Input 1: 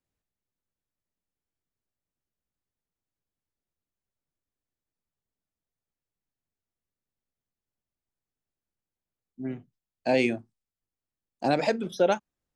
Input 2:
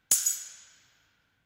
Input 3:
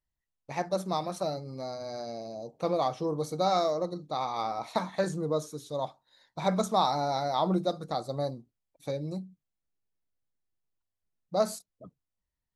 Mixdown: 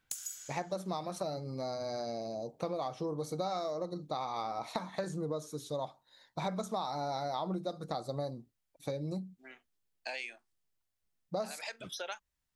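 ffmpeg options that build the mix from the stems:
ffmpeg -i stem1.wav -i stem2.wav -i stem3.wav -filter_complex "[0:a]highpass=1400,volume=1.5dB[link_01];[1:a]volume=-5.5dB[link_02];[2:a]volume=1dB[link_03];[link_01][link_02]amix=inputs=2:normalize=0,acompressor=threshold=-37dB:ratio=6,volume=0dB[link_04];[link_03][link_04]amix=inputs=2:normalize=0,acompressor=threshold=-33dB:ratio=6" out.wav

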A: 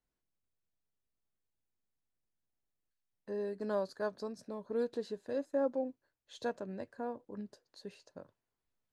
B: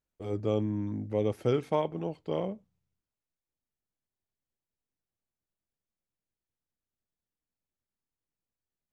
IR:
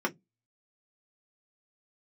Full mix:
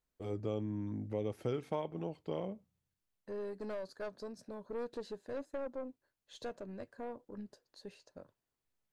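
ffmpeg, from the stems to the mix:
-filter_complex "[0:a]alimiter=level_in=1dB:limit=-24dB:level=0:latency=1:release=436,volume=-1dB,aeval=exprs='(tanh(44.7*val(0)+0.35)-tanh(0.35))/44.7':channel_layout=same,volume=-0.5dB[link_01];[1:a]volume=-3.5dB[link_02];[link_01][link_02]amix=inputs=2:normalize=0,acompressor=threshold=-36dB:ratio=2"

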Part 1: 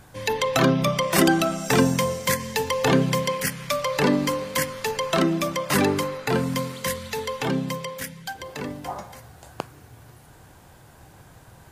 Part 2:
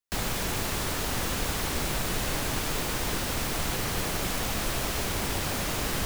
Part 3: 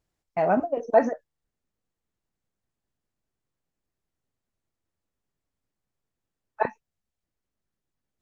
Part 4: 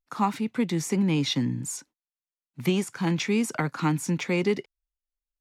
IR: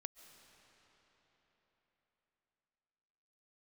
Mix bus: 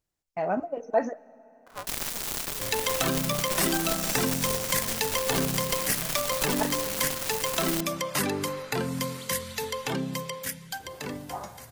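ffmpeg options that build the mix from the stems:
-filter_complex "[0:a]acompressor=threshold=-22dB:ratio=3,adelay=2450,volume=-4dB[link_01];[1:a]equalizer=frequency=74:width_type=o:width=1.2:gain=-11,acrusher=bits=3:mix=0:aa=0.5,adelay=1750,volume=-1.5dB[link_02];[2:a]volume=-7.5dB,asplit=2[link_03][link_04];[link_04]volume=-7.5dB[link_05];[3:a]bandpass=frequency=710:width_type=q:width=1.8:csg=0,aeval=exprs='val(0)*sgn(sin(2*PI*230*n/s))':channel_layout=same,adelay=1550,volume=-14dB,asplit=2[link_06][link_07];[link_07]volume=-4dB[link_08];[4:a]atrim=start_sample=2205[link_09];[link_05][link_08]amix=inputs=2:normalize=0[link_10];[link_10][link_09]afir=irnorm=-1:irlink=0[link_11];[link_01][link_02][link_03][link_06][link_11]amix=inputs=5:normalize=0,highshelf=frequency=4300:gain=7"

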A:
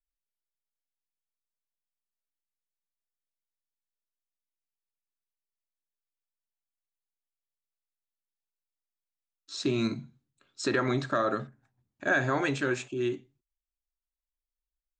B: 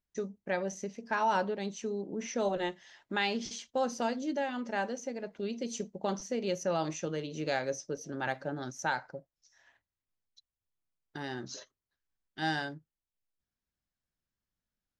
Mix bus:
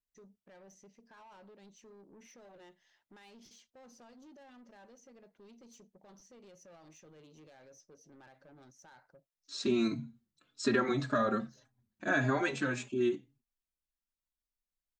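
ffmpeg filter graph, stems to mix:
ffmpeg -i stem1.wav -i stem2.wav -filter_complex "[0:a]equalizer=frequency=230:width=4.9:gain=9,asplit=2[link_01][link_02];[link_02]adelay=4.3,afreqshift=-1.8[link_03];[link_01][link_03]amix=inputs=2:normalize=1,volume=-0.5dB,asplit=2[link_04][link_05];[1:a]alimiter=level_in=4.5dB:limit=-24dB:level=0:latency=1:release=64,volume=-4.5dB,asoftclip=type=tanh:threshold=-37dB,volume=-15.5dB[link_06];[link_05]apad=whole_len=661351[link_07];[link_06][link_07]sidechaincompress=threshold=-56dB:ratio=3:attack=16:release=114[link_08];[link_04][link_08]amix=inputs=2:normalize=0" out.wav

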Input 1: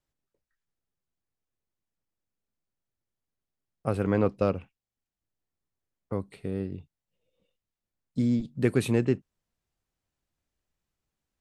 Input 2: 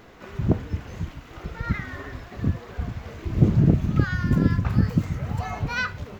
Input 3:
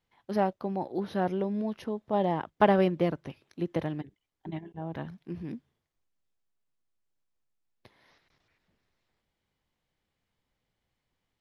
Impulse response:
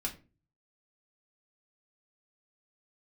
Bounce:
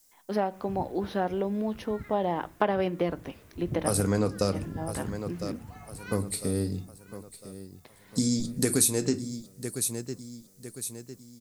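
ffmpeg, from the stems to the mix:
-filter_complex "[0:a]aexciter=amount=14.8:drive=5.9:freq=4400,volume=0dB,asplit=3[link_01][link_02][link_03];[link_02]volume=-4dB[link_04];[link_03]volume=-11.5dB[link_05];[1:a]adelay=300,volume=-17.5dB,asplit=2[link_06][link_07];[link_07]volume=-16.5dB[link_08];[2:a]highpass=220,volume=2dB,asplit=2[link_09][link_10];[link_10]volume=-12.5dB[link_11];[3:a]atrim=start_sample=2205[link_12];[link_04][link_11]amix=inputs=2:normalize=0[link_13];[link_13][link_12]afir=irnorm=-1:irlink=0[link_14];[link_05][link_08]amix=inputs=2:normalize=0,aecho=0:1:1004|2008|3012|4016|5020|6024:1|0.42|0.176|0.0741|0.0311|0.0131[link_15];[link_01][link_06][link_09][link_14][link_15]amix=inputs=5:normalize=0,acompressor=threshold=-23dB:ratio=3"

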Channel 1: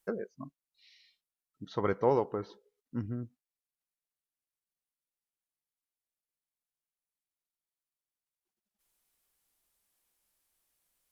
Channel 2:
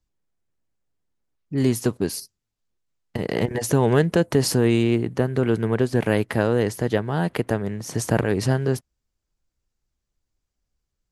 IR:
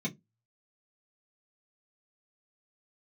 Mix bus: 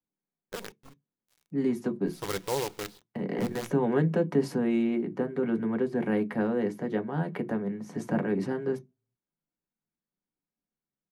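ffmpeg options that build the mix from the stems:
-filter_complex "[0:a]acrusher=bits=6:dc=4:mix=0:aa=0.000001,adynamicequalizer=threshold=0.00501:dfrequency=1800:dqfactor=0.7:tfrequency=1800:tqfactor=0.7:attack=5:release=100:ratio=0.375:range=3.5:mode=boostabove:tftype=highshelf,adelay=450,volume=-4dB,asplit=2[link_01][link_02];[link_02]volume=-16.5dB[link_03];[1:a]acrossover=split=180 2400:gain=0.0891 1 0.224[link_04][link_05][link_06];[link_04][link_05][link_06]amix=inputs=3:normalize=0,volume=-7.5dB,asplit=2[link_07][link_08];[link_08]volume=-7.5dB[link_09];[2:a]atrim=start_sample=2205[link_10];[link_03][link_09]amix=inputs=2:normalize=0[link_11];[link_11][link_10]afir=irnorm=-1:irlink=0[link_12];[link_01][link_07][link_12]amix=inputs=3:normalize=0"

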